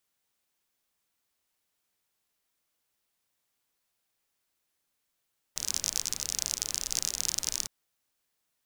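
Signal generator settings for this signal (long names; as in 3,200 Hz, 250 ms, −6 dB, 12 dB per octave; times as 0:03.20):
rain-like ticks over hiss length 2.11 s, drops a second 42, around 6,000 Hz, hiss −14.5 dB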